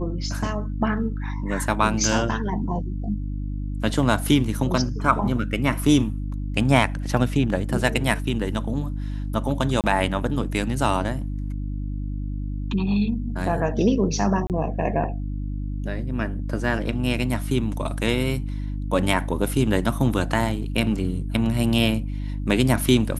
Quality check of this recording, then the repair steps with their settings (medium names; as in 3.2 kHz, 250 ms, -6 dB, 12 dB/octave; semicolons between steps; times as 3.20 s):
hum 50 Hz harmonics 6 -28 dBFS
9.81–9.84 s: dropout 28 ms
14.47–14.50 s: dropout 28 ms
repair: de-hum 50 Hz, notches 6; interpolate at 9.81 s, 28 ms; interpolate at 14.47 s, 28 ms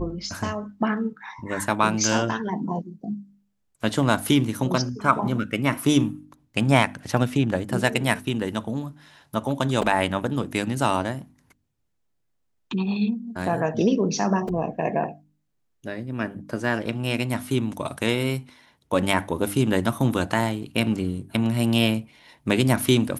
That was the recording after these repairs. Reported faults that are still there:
nothing left